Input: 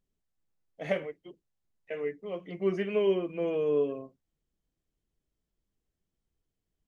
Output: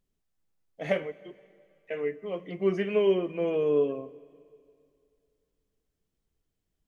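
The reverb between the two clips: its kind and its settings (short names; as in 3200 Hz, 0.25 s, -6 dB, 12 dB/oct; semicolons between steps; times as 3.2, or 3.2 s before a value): plate-style reverb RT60 2.5 s, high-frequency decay 0.95×, DRR 18.5 dB; gain +2.5 dB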